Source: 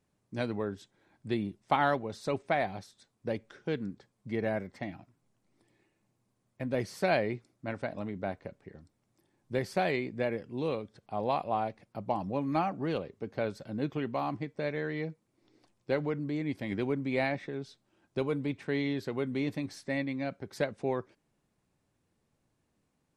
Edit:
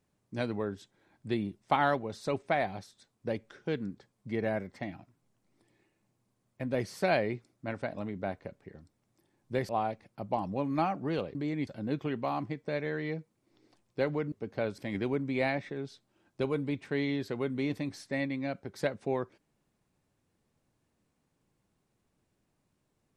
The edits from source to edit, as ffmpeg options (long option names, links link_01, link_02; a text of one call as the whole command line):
ffmpeg -i in.wav -filter_complex "[0:a]asplit=6[link_01][link_02][link_03][link_04][link_05][link_06];[link_01]atrim=end=9.692[link_07];[link_02]atrim=start=11.458:end=13.122[link_08];[link_03]atrim=start=16.228:end=16.552[link_09];[link_04]atrim=start=13.578:end=16.232[link_10];[link_05]atrim=start=13.118:end=13.582[link_11];[link_06]atrim=start=16.548[link_12];[link_07][link_08]acrossfade=duration=0.004:curve1=hsin:curve2=hsin[link_13];[link_13][link_09]acrossfade=duration=0.004:curve1=hsin:curve2=hsin[link_14];[link_14][link_10]acrossfade=duration=0.004:curve1=hsin:curve2=hsin[link_15];[link_15][link_11]acrossfade=duration=0.004:curve1=hsin:curve2=hsin[link_16];[link_16][link_12]acrossfade=duration=0.004:curve1=hsin:curve2=hsin" out.wav